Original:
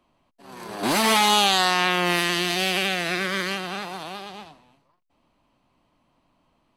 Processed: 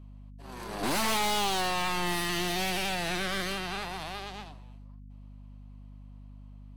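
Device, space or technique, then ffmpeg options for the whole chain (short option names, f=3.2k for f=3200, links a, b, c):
valve amplifier with mains hum: -af "aeval=exprs='(tanh(20*val(0)+0.6)-tanh(0.6))/20':c=same,aeval=exprs='val(0)+0.00501*(sin(2*PI*50*n/s)+sin(2*PI*2*50*n/s)/2+sin(2*PI*3*50*n/s)/3+sin(2*PI*4*50*n/s)/4+sin(2*PI*5*50*n/s)/5)':c=same"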